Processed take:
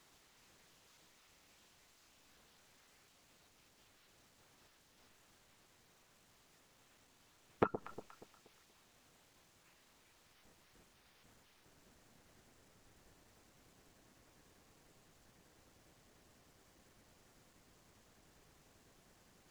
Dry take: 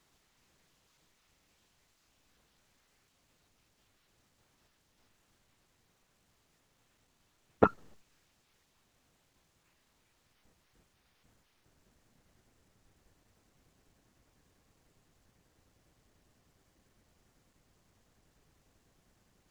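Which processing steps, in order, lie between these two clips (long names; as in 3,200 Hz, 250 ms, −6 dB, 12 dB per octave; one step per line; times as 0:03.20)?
low-shelf EQ 190 Hz −6.5 dB
downward compressor 20 to 1, threshold −33 dBFS, peak gain reduction 17.5 dB
on a send: delay that swaps between a low-pass and a high-pass 119 ms, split 910 Hz, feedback 62%, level −10 dB
on the sum: level +4.5 dB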